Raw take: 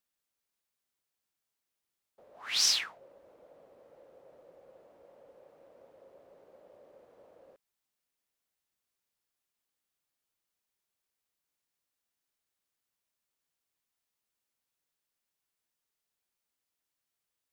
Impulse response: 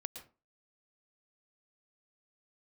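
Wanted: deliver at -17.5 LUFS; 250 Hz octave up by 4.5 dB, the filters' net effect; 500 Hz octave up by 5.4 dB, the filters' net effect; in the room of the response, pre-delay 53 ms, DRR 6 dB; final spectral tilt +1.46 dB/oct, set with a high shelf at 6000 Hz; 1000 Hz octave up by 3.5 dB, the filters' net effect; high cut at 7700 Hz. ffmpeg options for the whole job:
-filter_complex "[0:a]lowpass=7.7k,equalizer=f=250:t=o:g=4,equalizer=f=500:t=o:g=4.5,equalizer=f=1k:t=o:g=3.5,highshelf=f=6k:g=-7.5,asplit=2[a][b];[1:a]atrim=start_sample=2205,adelay=53[c];[b][c]afir=irnorm=-1:irlink=0,volume=-3.5dB[d];[a][d]amix=inputs=2:normalize=0,volume=13.5dB"

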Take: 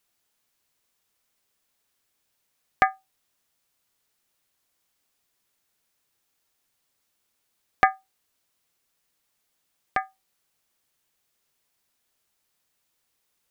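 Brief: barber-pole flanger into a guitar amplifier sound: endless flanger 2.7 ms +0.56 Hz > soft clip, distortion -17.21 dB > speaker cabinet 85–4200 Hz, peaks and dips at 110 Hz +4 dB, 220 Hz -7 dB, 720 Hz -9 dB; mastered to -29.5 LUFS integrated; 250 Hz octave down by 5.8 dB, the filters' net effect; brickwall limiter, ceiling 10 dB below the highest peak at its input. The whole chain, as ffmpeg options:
-filter_complex "[0:a]equalizer=f=250:t=o:g=-5.5,alimiter=limit=-12dB:level=0:latency=1,asplit=2[a][b];[b]adelay=2.7,afreqshift=0.56[c];[a][c]amix=inputs=2:normalize=1,asoftclip=threshold=-20.5dB,highpass=85,equalizer=f=110:t=q:w=4:g=4,equalizer=f=220:t=q:w=4:g=-7,equalizer=f=720:t=q:w=4:g=-9,lowpass=f=4.2k:w=0.5412,lowpass=f=4.2k:w=1.3066,volume=10dB"

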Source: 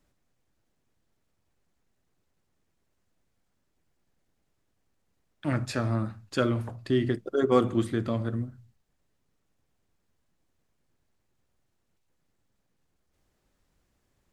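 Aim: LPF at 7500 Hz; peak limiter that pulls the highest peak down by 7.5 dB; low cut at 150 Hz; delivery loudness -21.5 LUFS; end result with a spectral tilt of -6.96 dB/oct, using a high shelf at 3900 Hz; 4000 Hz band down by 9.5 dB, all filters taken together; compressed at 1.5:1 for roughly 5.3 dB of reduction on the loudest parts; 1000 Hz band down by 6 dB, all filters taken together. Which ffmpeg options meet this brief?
-af "highpass=150,lowpass=7.5k,equalizer=f=1k:t=o:g=-7,highshelf=f=3.9k:g=-6.5,equalizer=f=4k:t=o:g=-8,acompressor=threshold=-34dB:ratio=1.5,volume=15dB,alimiter=limit=-9.5dB:level=0:latency=1"

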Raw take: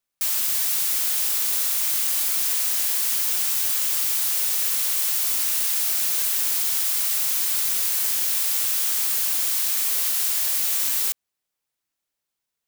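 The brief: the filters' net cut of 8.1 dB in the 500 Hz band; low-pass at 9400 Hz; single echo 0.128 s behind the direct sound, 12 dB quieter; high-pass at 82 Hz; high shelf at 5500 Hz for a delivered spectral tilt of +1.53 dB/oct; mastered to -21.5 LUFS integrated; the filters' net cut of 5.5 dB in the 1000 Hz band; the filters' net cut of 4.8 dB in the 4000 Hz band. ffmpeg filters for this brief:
-af "highpass=82,lowpass=9.4k,equalizer=f=500:t=o:g=-9,equalizer=f=1k:t=o:g=-4.5,equalizer=f=4k:t=o:g=-3.5,highshelf=f=5.5k:g=-5,aecho=1:1:128:0.251,volume=9dB"

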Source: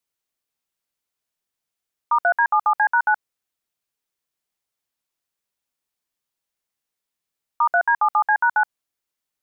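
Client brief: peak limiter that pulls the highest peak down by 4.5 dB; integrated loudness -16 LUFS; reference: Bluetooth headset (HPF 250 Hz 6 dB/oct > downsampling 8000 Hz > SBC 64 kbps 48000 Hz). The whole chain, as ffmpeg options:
-af "alimiter=limit=-15dB:level=0:latency=1,highpass=f=250:p=1,aresample=8000,aresample=44100,volume=8.5dB" -ar 48000 -c:a sbc -b:a 64k

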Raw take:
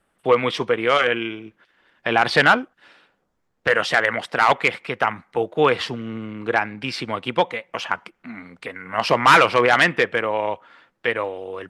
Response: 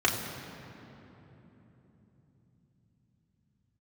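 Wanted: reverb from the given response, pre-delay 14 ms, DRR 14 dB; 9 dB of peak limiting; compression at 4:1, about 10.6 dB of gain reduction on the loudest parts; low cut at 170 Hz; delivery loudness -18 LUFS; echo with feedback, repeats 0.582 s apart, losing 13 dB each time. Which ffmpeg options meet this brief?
-filter_complex "[0:a]highpass=170,acompressor=threshold=-22dB:ratio=4,alimiter=limit=-16dB:level=0:latency=1,aecho=1:1:582|1164|1746:0.224|0.0493|0.0108,asplit=2[a][b];[1:a]atrim=start_sample=2205,adelay=14[c];[b][c]afir=irnorm=-1:irlink=0,volume=-27dB[d];[a][d]amix=inputs=2:normalize=0,volume=11.5dB"

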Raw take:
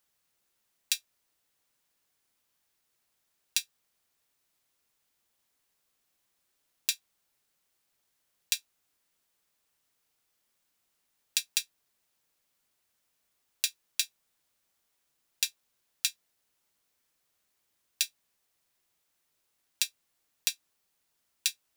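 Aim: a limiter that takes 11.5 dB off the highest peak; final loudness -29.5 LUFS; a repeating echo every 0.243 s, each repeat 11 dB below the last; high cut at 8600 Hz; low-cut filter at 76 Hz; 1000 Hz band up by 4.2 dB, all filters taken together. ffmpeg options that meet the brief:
-af "highpass=76,lowpass=8.6k,equalizer=f=1k:t=o:g=5.5,alimiter=limit=-18.5dB:level=0:latency=1,aecho=1:1:243|486|729:0.282|0.0789|0.0221,volume=14dB"

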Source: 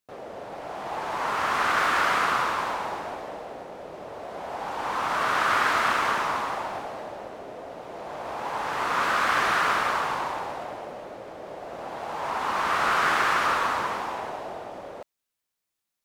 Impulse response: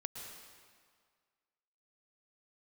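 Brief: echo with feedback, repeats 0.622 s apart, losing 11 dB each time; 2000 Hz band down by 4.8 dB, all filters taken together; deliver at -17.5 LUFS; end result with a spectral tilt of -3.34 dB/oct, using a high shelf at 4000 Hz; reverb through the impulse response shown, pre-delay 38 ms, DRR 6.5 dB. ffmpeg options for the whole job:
-filter_complex "[0:a]equalizer=f=2k:t=o:g=-5.5,highshelf=f=4k:g=-5.5,aecho=1:1:622|1244|1866:0.282|0.0789|0.0221,asplit=2[a][b];[1:a]atrim=start_sample=2205,adelay=38[c];[b][c]afir=irnorm=-1:irlink=0,volume=-5dB[d];[a][d]amix=inputs=2:normalize=0,volume=10.5dB"

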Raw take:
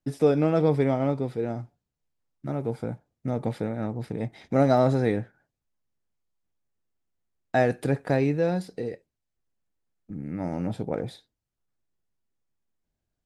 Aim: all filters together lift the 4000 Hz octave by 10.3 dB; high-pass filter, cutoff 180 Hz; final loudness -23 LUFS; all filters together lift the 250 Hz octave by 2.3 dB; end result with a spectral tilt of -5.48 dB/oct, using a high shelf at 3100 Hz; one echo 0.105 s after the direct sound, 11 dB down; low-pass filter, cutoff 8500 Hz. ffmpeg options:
-af "highpass=180,lowpass=8.5k,equalizer=f=250:t=o:g=4,highshelf=f=3.1k:g=4.5,equalizer=f=4k:t=o:g=8.5,aecho=1:1:105:0.282,volume=2.5dB"

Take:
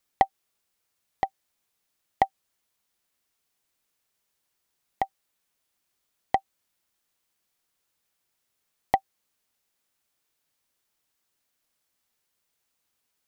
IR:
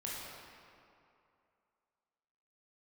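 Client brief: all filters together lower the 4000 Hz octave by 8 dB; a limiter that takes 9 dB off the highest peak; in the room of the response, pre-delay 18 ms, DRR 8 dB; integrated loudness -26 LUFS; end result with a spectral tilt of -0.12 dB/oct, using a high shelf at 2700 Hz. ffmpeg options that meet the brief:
-filter_complex "[0:a]highshelf=f=2.7k:g=-4,equalizer=f=4k:t=o:g=-7.5,alimiter=limit=-14.5dB:level=0:latency=1,asplit=2[a][b];[1:a]atrim=start_sample=2205,adelay=18[c];[b][c]afir=irnorm=-1:irlink=0,volume=-9.5dB[d];[a][d]amix=inputs=2:normalize=0,volume=12.5dB"

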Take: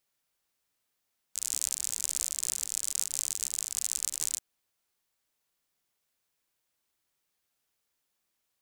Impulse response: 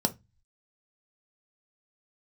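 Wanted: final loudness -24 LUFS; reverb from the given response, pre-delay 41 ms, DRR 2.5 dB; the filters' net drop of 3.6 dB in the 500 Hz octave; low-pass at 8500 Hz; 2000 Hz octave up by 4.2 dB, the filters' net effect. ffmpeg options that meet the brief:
-filter_complex "[0:a]lowpass=8.5k,equalizer=f=500:t=o:g=-5,equalizer=f=2k:t=o:g=5.5,asplit=2[a][b];[1:a]atrim=start_sample=2205,adelay=41[c];[b][c]afir=irnorm=-1:irlink=0,volume=-10.5dB[d];[a][d]amix=inputs=2:normalize=0,volume=7dB"

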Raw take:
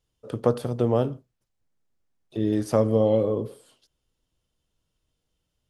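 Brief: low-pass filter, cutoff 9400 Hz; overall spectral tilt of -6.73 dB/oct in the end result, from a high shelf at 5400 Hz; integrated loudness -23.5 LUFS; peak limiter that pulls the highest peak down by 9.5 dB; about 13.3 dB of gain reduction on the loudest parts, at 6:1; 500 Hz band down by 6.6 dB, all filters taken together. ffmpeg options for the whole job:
-af "lowpass=9.4k,equalizer=f=500:t=o:g=-7.5,highshelf=f=5.4k:g=-3,acompressor=threshold=-34dB:ratio=6,volume=18dB,alimiter=limit=-10.5dB:level=0:latency=1"

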